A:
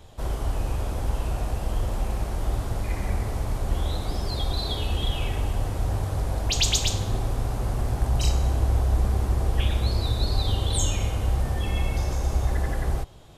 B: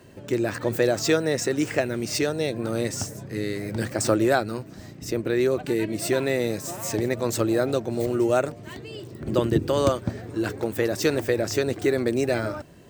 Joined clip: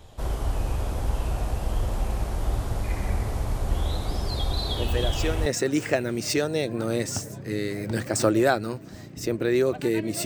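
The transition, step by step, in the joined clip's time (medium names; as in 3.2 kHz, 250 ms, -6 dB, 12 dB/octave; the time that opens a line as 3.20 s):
A
4.74 s: add B from 0.59 s 0.72 s -8 dB
5.46 s: go over to B from 1.31 s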